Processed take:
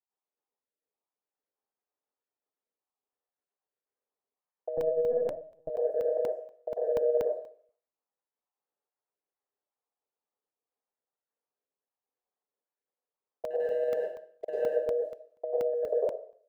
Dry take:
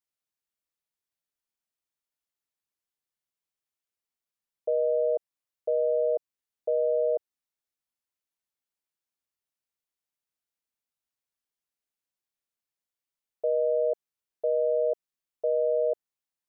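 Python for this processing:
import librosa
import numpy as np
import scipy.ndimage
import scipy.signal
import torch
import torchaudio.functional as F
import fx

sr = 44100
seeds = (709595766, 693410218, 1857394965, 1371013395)

y = fx.spec_dropout(x, sr, seeds[0], share_pct=40)
y = fx.env_lowpass(y, sr, base_hz=690.0, full_db=-24.5)
y = scipy.signal.sosfilt(scipy.signal.butter(2, 510.0, 'highpass', fs=sr, output='sos'), y)
y = fx.leveller(y, sr, passes=1, at=(13.5, 14.65))
y = fx.over_compress(y, sr, threshold_db=-32.0, ratio=-0.5)
y = fx.vibrato(y, sr, rate_hz=0.67, depth_cents=16.0)
y = fx.echo_feedback(y, sr, ms=62, feedback_pct=39, wet_db=-14.5)
y = fx.rev_plate(y, sr, seeds[1], rt60_s=0.51, hf_ratio=0.9, predelay_ms=85, drr_db=-6.5)
y = fx.lpc_vocoder(y, sr, seeds[2], excitation='pitch_kept', order=10, at=(4.77, 5.7))
y = fx.buffer_crackle(y, sr, first_s=0.73, period_s=0.24, block=64, kind='zero')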